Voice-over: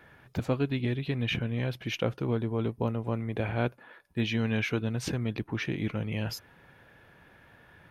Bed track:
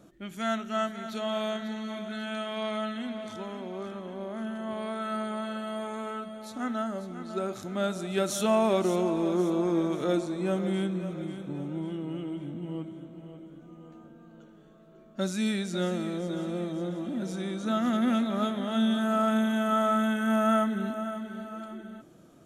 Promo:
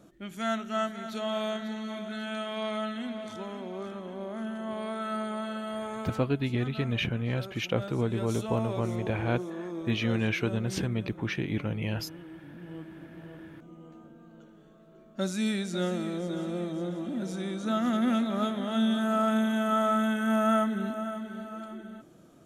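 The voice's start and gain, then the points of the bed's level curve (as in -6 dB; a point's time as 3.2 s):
5.70 s, +0.5 dB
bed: 6.01 s -0.5 dB
6.34 s -10.5 dB
12.43 s -10.5 dB
13.23 s -0.5 dB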